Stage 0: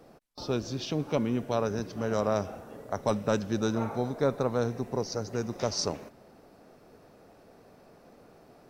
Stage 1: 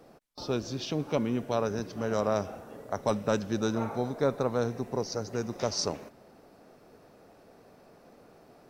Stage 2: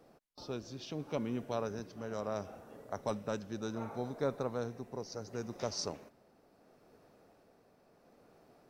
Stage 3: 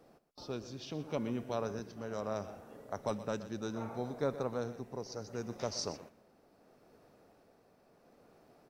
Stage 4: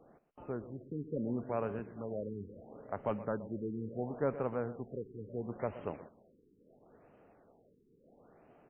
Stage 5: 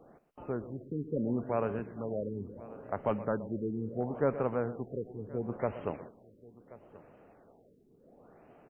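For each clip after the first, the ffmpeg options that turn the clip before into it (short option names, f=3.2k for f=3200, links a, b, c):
-af "lowshelf=f=140:g=-3"
-af "tremolo=f=0.71:d=0.35,volume=-7dB"
-af "aecho=1:1:123:0.188"
-af "afftfilt=real='re*lt(b*sr/1024,460*pow(3200/460,0.5+0.5*sin(2*PI*0.73*pts/sr)))':imag='im*lt(b*sr/1024,460*pow(3200/460,0.5+0.5*sin(2*PI*0.73*pts/sr)))':win_size=1024:overlap=0.75,volume=1dB"
-af "aecho=1:1:1082:0.1,volume=4dB"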